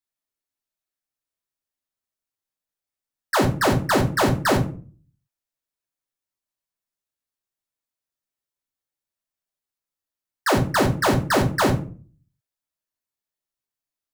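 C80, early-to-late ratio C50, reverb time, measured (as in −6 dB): 17.0 dB, 11.0 dB, 0.40 s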